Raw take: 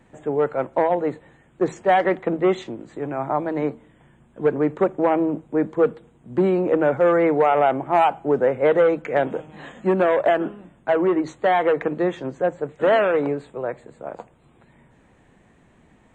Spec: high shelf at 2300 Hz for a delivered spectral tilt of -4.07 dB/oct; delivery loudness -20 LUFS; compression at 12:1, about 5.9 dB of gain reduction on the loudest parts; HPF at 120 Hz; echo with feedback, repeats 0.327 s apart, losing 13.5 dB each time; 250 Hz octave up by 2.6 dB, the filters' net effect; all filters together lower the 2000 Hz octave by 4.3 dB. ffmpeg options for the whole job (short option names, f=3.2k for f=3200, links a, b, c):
-af "highpass=120,equalizer=f=250:t=o:g=4.5,equalizer=f=2k:t=o:g=-3.5,highshelf=f=2.3k:g=-4.5,acompressor=threshold=-18dB:ratio=12,aecho=1:1:327|654:0.211|0.0444,volume=4.5dB"